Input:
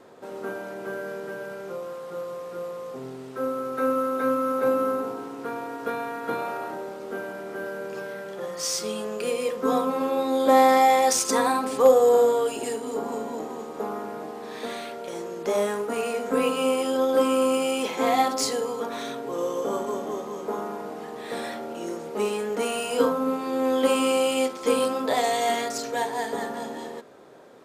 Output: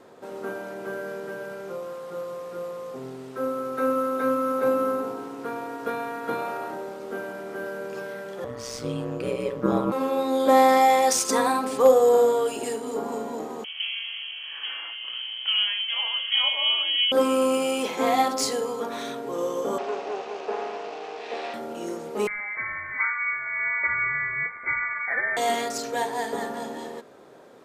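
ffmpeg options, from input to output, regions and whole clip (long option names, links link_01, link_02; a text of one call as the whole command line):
ffmpeg -i in.wav -filter_complex "[0:a]asettb=1/sr,asplit=3[link_01][link_02][link_03];[link_01]atrim=end=8.444[link_04];[link_02]atrim=start=8.44:end=9.92,asetpts=PTS-STARTPTS,afade=type=in:duration=0.004:curve=qsin,afade=type=out:start_time=1.476:duration=0.004:curve=qsin,bass=frequency=250:gain=13,treble=frequency=4000:gain=-9,aeval=exprs='val(0)*sin(2*PI*63*n/s)':channel_layout=same[link_05];[link_03]atrim=start=9.916[link_06];[link_04][link_05]acrossfade=duration=0.004:curve1=hsin:curve2=qsin[link_07];[link_07][link_06]acrossfade=duration=0.004:curve1=qsin:curve2=hsin,asettb=1/sr,asplit=3[link_08][link_09][link_10];[link_08]atrim=end=13.644[link_11];[link_09]atrim=start=13.64:end=17.12,asetpts=PTS-STARTPTS,afade=type=in:duration=0.004:curve=qsin,afade=type=out:start_time=3.476:duration=0.004:curve=qsin,lowpass=frequency=3000:width_type=q:width=0.5098,lowpass=frequency=3000:width_type=q:width=0.6013,lowpass=frequency=3000:width_type=q:width=0.9,lowpass=frequency=3000:width_type=q:width=2.563,afreqshift=-3500,highpass=430[link_12];[link_10]atrim=start=17.116[link_13];[link_11][link_12]acrossfade=duration=0.004:curve1=hsin:curve2=qsin[link_14];[link_14][link_13]acrossfade=duration=0.004:curve1=qsin:curve2=hsin,asettb=1/sr,asplit=3[link_15][link_16][link_17];[link_15]atrim=end=19.784[link_18];[link_16]atrim=start=19.78:end=21.54,asetpts=PTS-STARTPTS,afade=type=in:duration=0.004:curve=qsin,afade=type=out:start_time=1.756:duration=0.004:curve=qsin,acrusher=bits=4:dc=4:mix=0:aa=0.000001,highpass=350,equalizer=frequency=430:width_type=q:width=4:gain=9,equalizer=frequency=740:width_type=q:width=4:gain=9,equalizer=frequency=2600:width_type=q:width=4:gain=8,lowpass=frequency=5600:width=0.5412,lowpass=frequency=5600:width=1.3066[link_19];[link_17]atrim=start=21.536[link_20];[link_18][link_19]acrossfade=duration=0.004:curve1=hsin:curve2=qsin[link_21];[link_21][link_20]acrossfade=duration=0.004:curve1=qsin:curve2=hsin,asettb=1/sr,asplit=3[link_22][link_23][link_24];[link_22]atrim=end=22.274[link_25];[link_23]atrim=start=22.27:end=25.37,asetpts=PTS-STARTPTS,afade=type=in:duration=0.004:curve=qsin,afade=type=out:start_time=3.096:duration=0.004:curve=qsin,equalizer=frequency=490:width_type=o:width=0.61:gain=-8.5,lowpass=frequency=2100:width_type=q:width=0.5098,lowpass=frequency=2100:width_type=q:width=0.6013,lowpass=frequency=2100:width_type=q:width=0.9,lowpass=frequency=2100:width_type=q:width=2.563,afreqshift=-2500[link_26];[link_24]atrim=start=25.366[link_27];[link_25][link_26]acrossfade=duration=0.004:curve1=hsin:curve2=qsin[link_28];[link_28][link_27]acrossfade=duration=0.004:curve1=qsin:curve2=hsin" out.wav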